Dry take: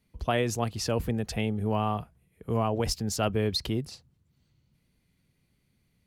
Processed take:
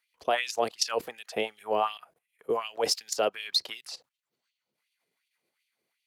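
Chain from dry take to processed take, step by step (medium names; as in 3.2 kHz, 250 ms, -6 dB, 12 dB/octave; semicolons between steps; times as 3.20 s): level held to a coarse grid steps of 16 dB; LFO high-pass sine 2.7 Hz 410–3000 Hz; dynamic bell 4.7 kHz, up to +5 dB, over -51 dBFS, Q 1.1; trim +5 dB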